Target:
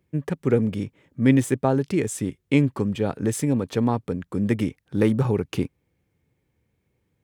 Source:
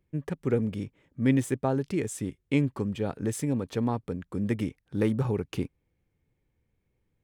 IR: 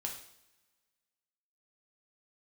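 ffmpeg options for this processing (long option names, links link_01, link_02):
-af "highpass=73,volume=6dB"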